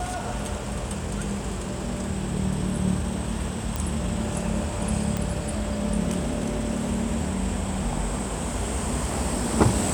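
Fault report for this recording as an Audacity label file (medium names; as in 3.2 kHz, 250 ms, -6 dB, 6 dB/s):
3.760000	3.760000	pop
5.170000	5.170000	pop -13 dBFS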